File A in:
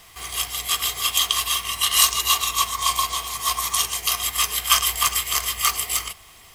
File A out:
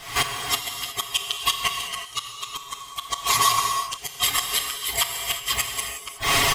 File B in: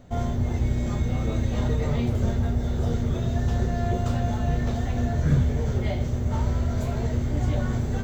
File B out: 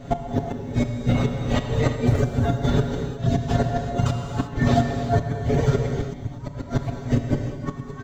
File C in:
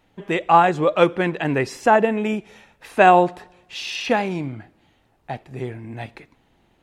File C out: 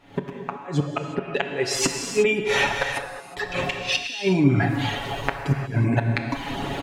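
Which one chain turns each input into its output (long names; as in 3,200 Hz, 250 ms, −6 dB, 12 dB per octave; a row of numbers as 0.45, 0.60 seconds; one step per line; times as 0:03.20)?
camcorder AGC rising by 76 dB per second
reverb reduction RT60 1.1 s
downward compressor 2 to 1, threshold −28 dBFS
high-shelf EQ 8,400 Hz −10 dB
gate with flip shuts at −16 dBFS, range −29 dB
low-shelf EQ 75 Hz −7 dB
comb filter 7.2 ms, depth 70%
reverb whose tail is shaped and stops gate 390 ms flat, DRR 3.5 dB
loudness normalisation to −24 LKFS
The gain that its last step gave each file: +6.5, +7.5, +5.0 decibels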